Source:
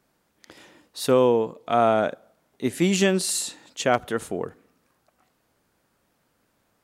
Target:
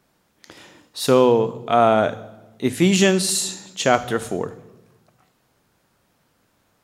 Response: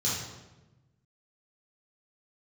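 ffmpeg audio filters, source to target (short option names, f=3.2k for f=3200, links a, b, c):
-filter_complex "[0:a]asplit=2[a][b];[1:a]atrim=start_sample=2205,highshelf=f=4.1k:g=10.5[c];[b][c]afir=irnorm=-1:irlink=0,volume=-23dB[d];[a][d]amix=inputs=2:normalize=0,volume=4.5dB"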